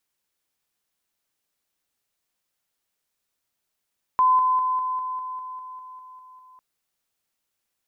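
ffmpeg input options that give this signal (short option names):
-f lavfi -i "aevalsrc='pow(10,(-14.5-3*floor(t/0.2))/20)*sin(2*PI*1020*t)':d=2.4:s=44100"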